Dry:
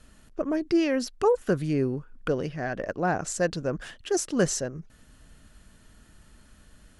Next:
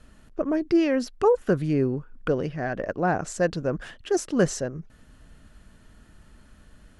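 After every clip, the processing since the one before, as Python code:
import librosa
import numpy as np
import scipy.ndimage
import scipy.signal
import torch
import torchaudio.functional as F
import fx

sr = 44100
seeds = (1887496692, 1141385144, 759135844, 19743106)

y = fx.high_shelf(x, sr, hz=3500.0, db=-8.0)
y = y * librosa.db_to_amplitude(2.5)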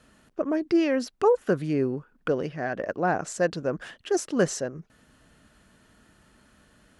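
y = fx.highpass(x, sr, hz=210.0, slope=6)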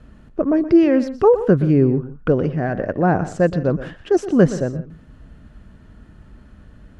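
y = fx.riaa(x, sr, side='playback')
y = fx.echo_multitap(y, sr, ms=(121, 170), db=(-14.0, -20.0))
y = y * librosa.db_to_amplitude(4.5)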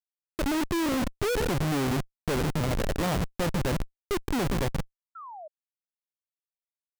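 y = fx.freq_compress(x, sr, knee_hz=1200.0, ratio=1.5)
y = fx.schmitt(y, sr, flips_db=-21.5)
y = fx.spec_paint(y, sr, seeds[0], shape='fall', start_s=5.15, length_s=0.33, low_hz=590.0, high_hz=1400.0, level_db=-35.0)
y = y * librosa.db_to_amplitude(-7.0)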